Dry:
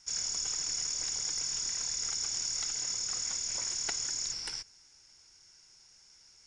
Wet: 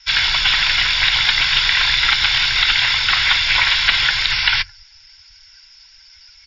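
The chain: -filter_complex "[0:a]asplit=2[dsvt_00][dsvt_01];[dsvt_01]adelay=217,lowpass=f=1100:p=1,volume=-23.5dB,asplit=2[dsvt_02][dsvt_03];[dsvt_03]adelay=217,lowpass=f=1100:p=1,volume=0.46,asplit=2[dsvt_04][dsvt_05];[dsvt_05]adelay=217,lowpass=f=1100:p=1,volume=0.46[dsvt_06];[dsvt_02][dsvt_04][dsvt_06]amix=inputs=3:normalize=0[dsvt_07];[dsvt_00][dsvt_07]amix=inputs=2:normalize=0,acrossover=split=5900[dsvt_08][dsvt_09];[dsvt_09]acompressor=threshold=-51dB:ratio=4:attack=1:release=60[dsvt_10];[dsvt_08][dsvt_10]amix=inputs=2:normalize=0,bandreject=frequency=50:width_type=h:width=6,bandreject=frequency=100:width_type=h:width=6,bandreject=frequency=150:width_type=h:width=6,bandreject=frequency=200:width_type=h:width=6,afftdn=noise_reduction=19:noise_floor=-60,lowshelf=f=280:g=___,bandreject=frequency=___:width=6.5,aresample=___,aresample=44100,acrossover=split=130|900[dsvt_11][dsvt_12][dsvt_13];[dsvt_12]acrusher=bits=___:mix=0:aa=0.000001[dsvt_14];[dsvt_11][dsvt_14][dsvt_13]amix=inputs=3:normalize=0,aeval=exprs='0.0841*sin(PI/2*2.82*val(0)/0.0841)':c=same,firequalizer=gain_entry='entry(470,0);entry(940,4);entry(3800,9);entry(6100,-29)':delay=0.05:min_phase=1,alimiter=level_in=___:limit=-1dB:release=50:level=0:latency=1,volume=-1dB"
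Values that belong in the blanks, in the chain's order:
-2.5, 1200, 16000, 4, 19dB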